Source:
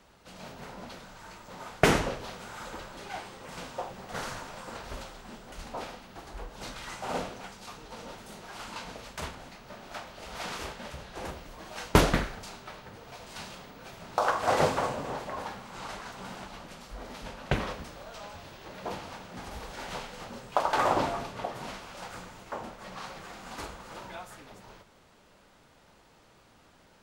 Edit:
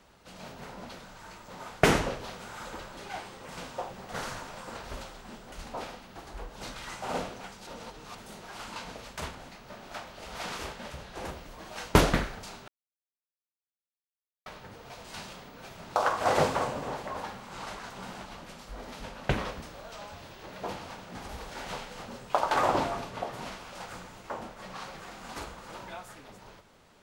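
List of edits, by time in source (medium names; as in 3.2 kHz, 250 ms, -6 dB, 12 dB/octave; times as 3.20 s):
7.67–8.15 s: reverse
12.68 s: insert silence 1.78 s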